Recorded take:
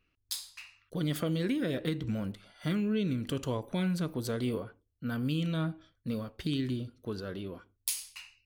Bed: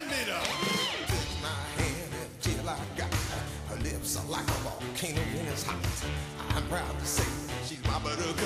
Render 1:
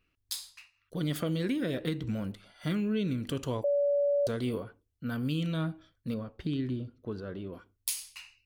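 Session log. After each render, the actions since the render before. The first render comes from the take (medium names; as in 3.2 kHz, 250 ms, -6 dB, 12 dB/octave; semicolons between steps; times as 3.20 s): 0.45–0.99 s: dip -13.5 dB, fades 0.27 s; 3.64–4.27 s: bleep 572 Hz -23.5 dBFS; 6.14–7.53 s: low-pass 1.6 kHz 6 dB/octave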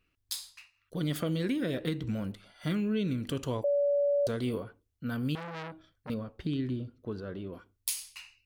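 5.35–6.10 s: transformer saturation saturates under 2 kHz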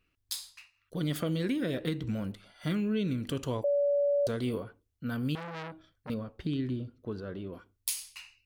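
no audible change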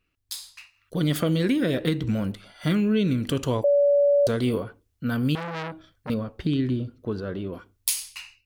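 level rider gain up to 8 dB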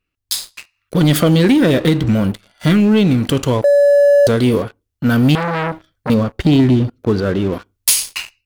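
gain riding within 4 dB 2 s; waveshaping leveller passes 3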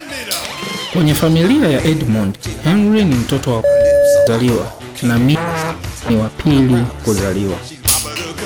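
add bed +6.5 dB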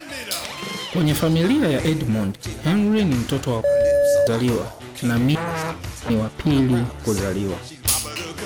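trim -6.5 dB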